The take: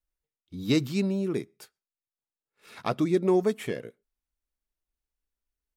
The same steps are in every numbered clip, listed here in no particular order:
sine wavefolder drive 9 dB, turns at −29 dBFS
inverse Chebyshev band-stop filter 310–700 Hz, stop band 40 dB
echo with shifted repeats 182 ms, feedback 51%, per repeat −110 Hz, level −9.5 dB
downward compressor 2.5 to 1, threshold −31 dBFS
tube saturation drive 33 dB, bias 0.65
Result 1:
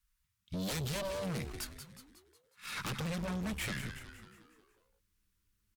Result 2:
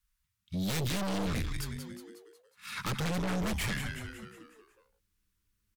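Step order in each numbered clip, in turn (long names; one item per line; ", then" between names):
downward compressor, then inverse Chebyshev band-stop filter, then sine wavefolder, then echo with shifted repeats, then tube saturation
inverse Chebyshev band-stop filter, then echo with shifted repeats, then tube saturation, then downward compressor, then sine wavefolder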